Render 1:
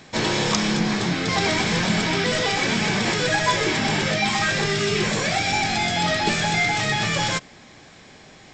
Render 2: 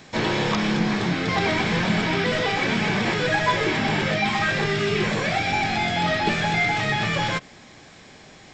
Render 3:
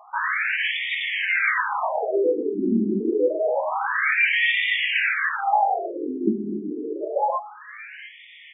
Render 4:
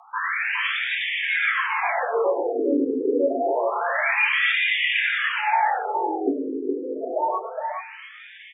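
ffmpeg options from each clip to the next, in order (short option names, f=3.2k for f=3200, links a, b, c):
-filter_complex "[0:a]acrossover=split=3800[a][b];[b]acompressor=threshold=-43dB:ratio=4:attack=1:release=60[c];[a][c]amix=inputs=2:normalize=0"
-af "aecho=1:1:697:0.119,afftfilt=real='re*between(b*sr/1024,280*pow(2600/280,0.5+0.5*sin(2*PI*0.27*pts/sr))/1.41,280*pow(2600/280,0.5+0.5*sin(2*PI*0.27*pts/sr))*1.41)':imag='im*between(b*sr/1024,280*pow(2600/280,0.5+0.5*sin(2*PI*0.27*pts/sr))/1.41,280*pow(2600/280,0.5+0.5*sin(2*PI*0.27*pts/sr))*1.41)':win_size=1024:overlap=0.75,volume=7.5dB"
-filter_complex "[0:a]afreqshift=61,asplit=2[a][b];[b]aecho=0:1:108|415:0.224|0.562[c];[a][c]amix=inputs=2:normalize=0,volume=-1.5dB"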